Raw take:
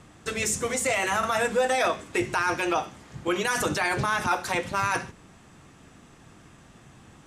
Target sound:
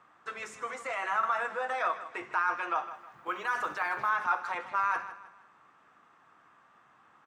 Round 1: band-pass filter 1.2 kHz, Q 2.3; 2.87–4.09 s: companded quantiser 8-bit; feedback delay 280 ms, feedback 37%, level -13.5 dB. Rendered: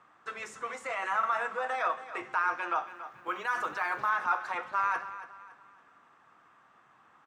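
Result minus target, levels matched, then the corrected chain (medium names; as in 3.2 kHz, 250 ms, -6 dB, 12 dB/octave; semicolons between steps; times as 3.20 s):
echo 123 ms late
band-pass filter 1.2 kHz, Q 2.3; 2.87–4.09 s: companded quantiser 8-bit; feedback delay 157 ms, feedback 37%, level -13.5 dB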